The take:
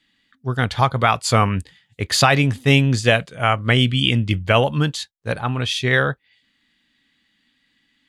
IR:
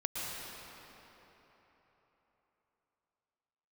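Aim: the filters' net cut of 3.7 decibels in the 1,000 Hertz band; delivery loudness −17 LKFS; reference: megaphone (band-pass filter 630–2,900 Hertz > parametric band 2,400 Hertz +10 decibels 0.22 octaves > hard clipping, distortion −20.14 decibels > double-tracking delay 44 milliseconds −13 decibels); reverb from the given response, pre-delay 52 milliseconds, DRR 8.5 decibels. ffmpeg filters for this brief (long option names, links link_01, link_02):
-filter_complex "[0:a]equalizer=frequency=1000:width_type=o:gain=-4,asplit=2[link_01][link_02];[1:a]atrim=start_sample=2205,adelay=52[link_03];[link_02][link_03]afir=irnorm=-1:irlink=0,volume=-13dB[link_04];[link_01][link_04]amix=inputs=2:normalize=0,highpass=630,lowpass=2900,equalizer=frequency=2400:width_type=o:width=0.22:gain=10,asoftclip=type=hard:threshold=-8dB,asplit=2[link_05][link_06];[link_06]adelay=44,volume=-13dB[link_07];[link_05][link_07]amix=inputs=2:normalize=0,volume=4dB"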